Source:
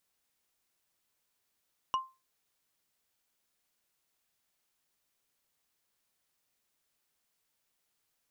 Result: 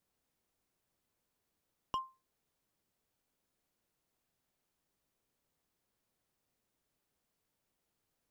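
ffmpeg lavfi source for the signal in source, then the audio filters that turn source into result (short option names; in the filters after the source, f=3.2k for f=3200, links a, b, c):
-f lavfi -i "aevalsrc='0.0668*pow(10,-3*t/0.27)*sin(2*PI*1050*t)+0.0251*pow(10,-3*t/0.08)*sin(2*PI*2894.8*t)+0.00944*pow(10,-3*t/0.036)*sin(2*PI*5674.2*t)+0.00355*pow(10,-3*t/0.02)*sin(2*PI*9379.6*t)+0.00133*pow(10,-3*t/0.012)*sin(2*PI*14007*t)':d=0.45:s=44100"
-filter_complex "[0:a]tiltshelf=f=860:g=6.5,acrossover=split=650|1400[a][b][c];[b]asoftclip=type=hard:threshold=-38.5dB[d];[a][d][c]amix=inputs=3:normalize=0"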